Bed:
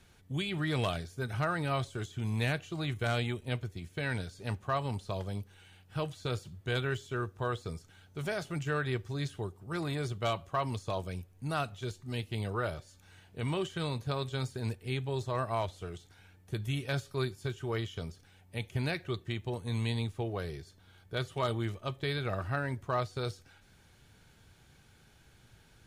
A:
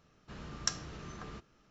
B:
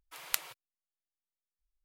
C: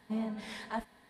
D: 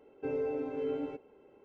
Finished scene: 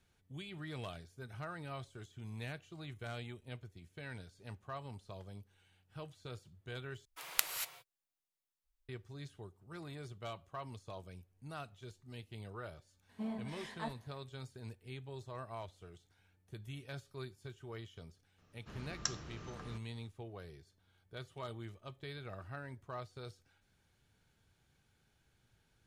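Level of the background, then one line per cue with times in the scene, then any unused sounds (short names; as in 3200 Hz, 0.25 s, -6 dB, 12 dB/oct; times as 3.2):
bed -13 dB
7.05 replace with B -0.5 dB + non-linear reverb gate 0.26 s rising, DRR 5.5 dB
13.09 add C -6 dB
18.38 add A -4 dB
not used: D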